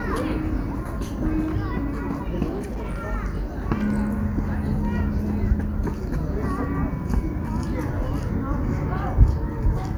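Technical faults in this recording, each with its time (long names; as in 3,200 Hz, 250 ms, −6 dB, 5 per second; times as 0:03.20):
0:02.52–0:03.05: clipping −25 dBFS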